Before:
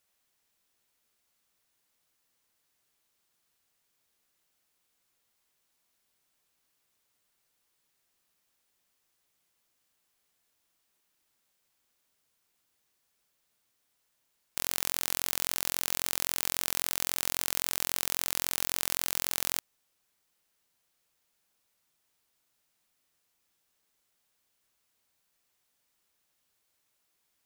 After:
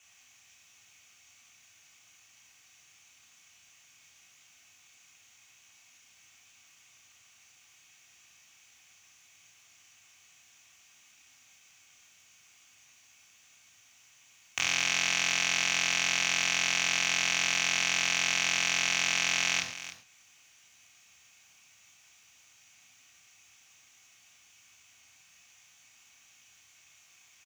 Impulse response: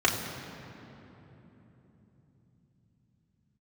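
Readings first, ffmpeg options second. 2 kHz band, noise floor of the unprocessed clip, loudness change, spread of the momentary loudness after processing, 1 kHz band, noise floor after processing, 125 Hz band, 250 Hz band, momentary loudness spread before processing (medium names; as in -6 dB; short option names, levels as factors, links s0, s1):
+12.5 dB, -77 dBFS, +3.5 dB, 4 LU, +4.5 dB, -61 dBFS, +2.5 dB, +1.5 dB, 1 LU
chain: -filter_complex "[0:a]equalizer=f=400:t=o:w=0.67:g=-11,equalizer=f=2500:t=o:w=0.67:g=10,equalizer=f=6300:t=o:w=0.67:g=12,alimiter=limit=0.376:level=0:latency=1:release=141,aecho=1:1:302:0.211,acrossover=split=5500[s0][s1];[s1]acompressor=threshold=0.00141:ratio=4[s2];[s0][s2]amix=inputs=2:normalize=0[s3];[1:a]atrim=start_sample=2205,afade=t=out:st=0.19:d=0.01,atrim=end_sample=8820[s4];[s3][s4]afir=irnorm=-1:irlink=0"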